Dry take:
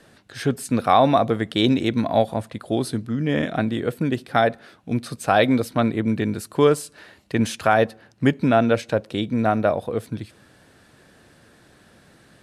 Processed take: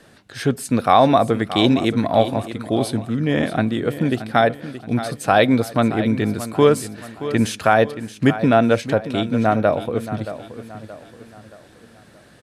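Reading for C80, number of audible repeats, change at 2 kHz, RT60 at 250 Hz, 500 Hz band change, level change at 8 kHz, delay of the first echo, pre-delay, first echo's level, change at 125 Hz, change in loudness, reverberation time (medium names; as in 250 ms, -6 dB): no reverb, 3, +2.5 dB, no reverb, +2.5 dB, +3.0 dB, 625 ms, no reverb, -13.0 dB, +3.0 dB, +2.5 dB, no reverb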